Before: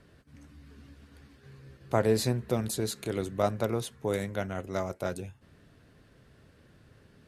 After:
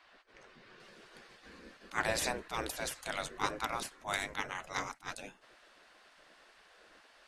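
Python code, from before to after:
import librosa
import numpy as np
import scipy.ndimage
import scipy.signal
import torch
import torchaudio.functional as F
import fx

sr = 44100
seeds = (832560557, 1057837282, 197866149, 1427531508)

y = fx.lowpass(x, sr, hz=fx.steps((0.0, 4300.0), (0.8, 8200.0)), slope=12)
y = fx.spec_gate(y, sr, threshold_db=-15, keep='weak')
y = fx.attack_slew(y, sr, db_per_s=300.0)
y = y * 10.0 ** (6.5 / 20.0)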